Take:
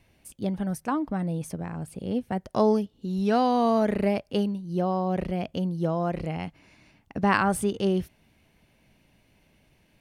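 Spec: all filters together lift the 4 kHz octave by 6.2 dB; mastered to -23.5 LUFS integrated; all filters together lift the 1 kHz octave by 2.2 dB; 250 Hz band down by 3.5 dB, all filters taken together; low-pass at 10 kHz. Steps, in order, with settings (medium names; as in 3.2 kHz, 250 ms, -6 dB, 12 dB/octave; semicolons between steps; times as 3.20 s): low-pass 10 kHz; peaking EQ 250 Hz -5 dB; peaking EQ 1 kHz +3 dB; peaking EQ 4 kHz +8.5 dB; trim +4 dB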